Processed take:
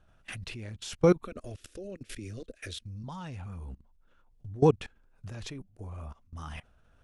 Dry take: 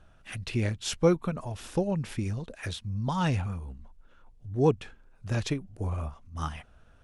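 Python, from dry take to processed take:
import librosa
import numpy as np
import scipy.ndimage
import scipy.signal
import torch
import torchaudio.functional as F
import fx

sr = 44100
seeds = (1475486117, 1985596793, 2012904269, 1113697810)

y = fx.fixed_phaser(x, sr, hz=370.0, stages=4, at=(1.25, 3.04))
y = fx.level_steps(y, sr, step_db=22)
y = F.gain(torch.from_numpy(y), 4.0).numpy()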